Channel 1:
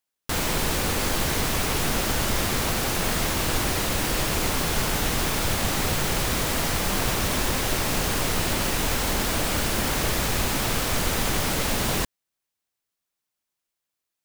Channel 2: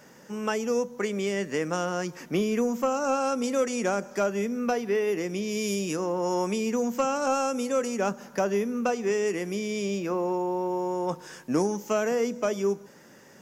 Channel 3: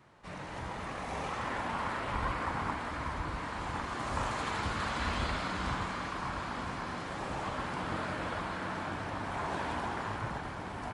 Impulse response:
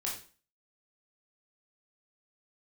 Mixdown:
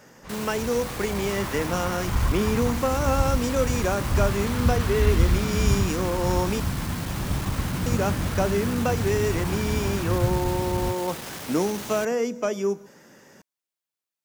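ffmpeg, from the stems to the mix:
-filter_complex "[0:a]asoftclip=type=tanh:threshold=-26dB,highpass=99,volume=-6dB[a];[1:a]volume=1dB,asplit=3[b][c][d];[b]atrim=end=6.6,asetpts=PTS-STARTPTS,afade=t=out:st=6.596:d=0.004:c=hsin[e];[c]atrim=start=6.6:end=7.86,asetpts=PTS-STARTPTS,volume=0[f];[d]atrim=start=7.86,asetpts=PTS-STARTPTS,afade=t=in:d=0.004:c=hsin[g];[e][f][g]concat=n=3:v=0:a=1[h];[2:a]asubboost=boost=9:cutoff=190,volume=1dB[i];[a][h][i]amix=inputs=3:normalize=0"

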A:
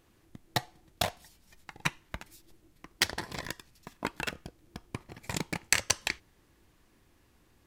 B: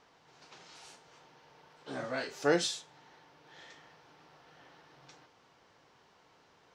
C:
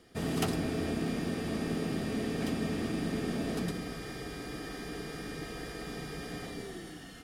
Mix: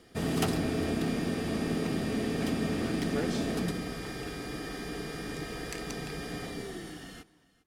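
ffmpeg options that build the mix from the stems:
-filter_complex "[0:a]volume=-18dB[a];[1:a]adelay=700,volume=-10.5dB[b];[2:a]aeval=exprs='clip(val(0),-1,0.0631)':c=same,volume=2.5dB,asplit=2[c][d];[d]volume=-21.5dB,aecho=0:1:404:1[e];[a][b][c][e]amix=inputs=4:normalize=0"

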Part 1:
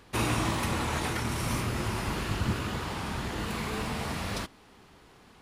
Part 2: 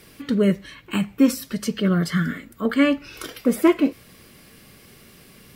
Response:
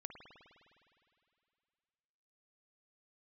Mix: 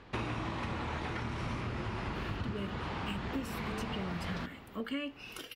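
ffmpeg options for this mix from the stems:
-filter_complex "[0:a]lowpass=3.4k,volume=0dB,asplit=2[a][b];[b]volume=-9.5dB[c];[1:a]equalizer=f=2.8k:t=o:w=0.24:g=12.5,adelay=2150,volume=-12dB[d];[2:a]atrim=start_sample=2205[e];[c][e]afir=irnorm=-1:irlink=0[f];[a][d][f]amix=inputs=3:normalize=0,acompressor=threshold=-34dB:ratio=6"

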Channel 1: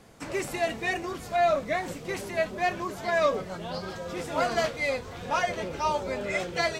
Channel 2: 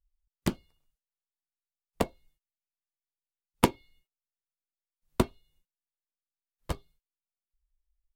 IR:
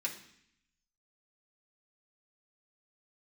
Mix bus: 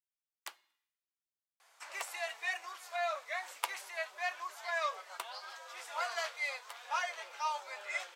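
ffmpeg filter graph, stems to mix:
-filter_complex "[0:a]adelay=1600,volume=-6dB[a];[1:a]volume=-9dB,asplit=2[b][c];[c]volume=-14dB[d];[2:a]atrim=start_sample=2205[e];[d][e]afir=irnorm=-1:irlink=0[f];[a][b][f]amix=inputs=3:normalize=0,highpass=f=830:w=0.5412,highpass=f=830:w=1.3066"

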